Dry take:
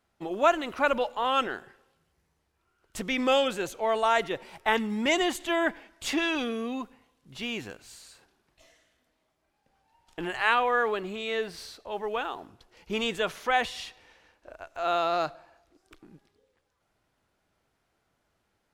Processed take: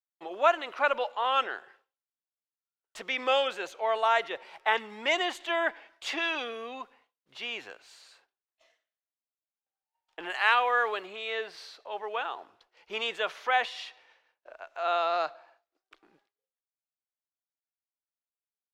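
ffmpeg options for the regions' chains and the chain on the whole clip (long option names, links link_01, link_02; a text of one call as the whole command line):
ffmpeg -i in.wav -filter_complex "[0:a]asettb=1/sr,asplit=3[link_01][link_02][link_03];[link_01]atrim=end=10.304[link_04];[link_02]atrim=start=10.3:end=11.06,asetpts=PTS-STARTPTS,afade=type=in:duration=0.004:curve=qsin,afade=type=out:start_time=0.756:duration=0.004:curve=qsin,highshelf=frequency=5200:gain=10.5,asoftclip=type=hard:threshold=-9dB[link_05];[link_03]atrim=start=11.056[link_06];[link_04][link_05]acrossfade=duration=0.004:curve1=hsin:curve2=qsin[link_07];[link_07][link_06]acrossfade=duration=0.004:curve1=qsin:curve2=hsin,agate=range=-33dB:threshold=-53dB:ratio=3:detection=peak,acrossover=split=440 5200:gain=0.0708 1 0.2[link_08][link_09][link_10];[link_08][link_09][link_10]amix=inputs=3:normalize=0" out.wav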